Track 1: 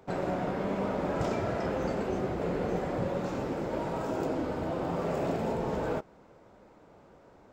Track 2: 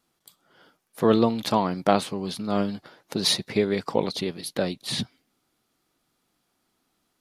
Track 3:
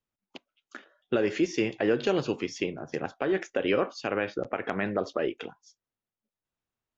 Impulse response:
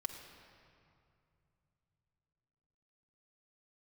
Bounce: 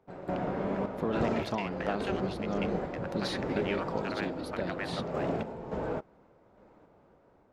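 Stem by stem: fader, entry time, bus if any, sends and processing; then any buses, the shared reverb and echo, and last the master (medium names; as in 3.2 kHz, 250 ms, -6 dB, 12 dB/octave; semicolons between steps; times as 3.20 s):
+0.5 dB, 0.00 s, no send, random-step tremolo, depth 75%
-7.0 dB, 0.00 s, no send, expander -46 dBFS; compression 2.5:1, threshold -23 dBFS, peak gain reduction 7 dB
-1.0 dB, 0.00 s, no send, local Wiener filter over 15 samples; high-pass 1.3 kHz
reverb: none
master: low-pass 2.4 kHz 6 dB/octave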